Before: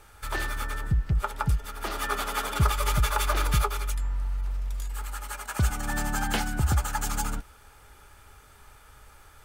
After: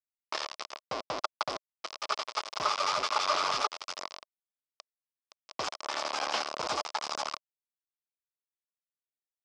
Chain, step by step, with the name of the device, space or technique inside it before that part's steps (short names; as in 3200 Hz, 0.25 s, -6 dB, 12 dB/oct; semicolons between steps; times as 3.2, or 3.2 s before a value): hand-held game console (bit-crush 4-bit; speaker cabinet 490–5700 Hz, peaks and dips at 620 Hz +7 dB, 1100 Hz +8 dB, 1700 Hz -6 dB, 5100 Hz +8 dB); gain -5 dB